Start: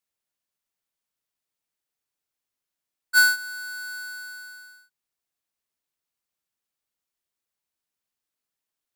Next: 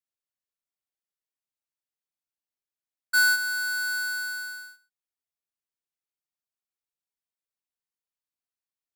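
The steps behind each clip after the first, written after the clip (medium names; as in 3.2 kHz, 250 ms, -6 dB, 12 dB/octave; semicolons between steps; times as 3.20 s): waveshaping leveller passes 3; trim -5 dB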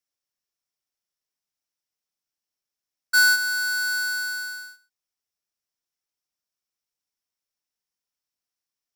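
peaking EQ 5.5 kHz +10.5 dB 0.27 oct; trim +3 dB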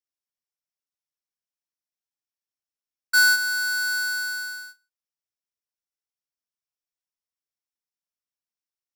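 gate -43 dBFS, range -9 dB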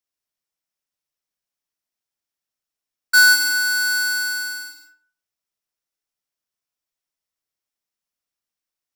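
algorithmic reverb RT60 0.46 s, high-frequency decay 0.65×, pre-delay 115 ms, DRR 6 dB; trim +5 dB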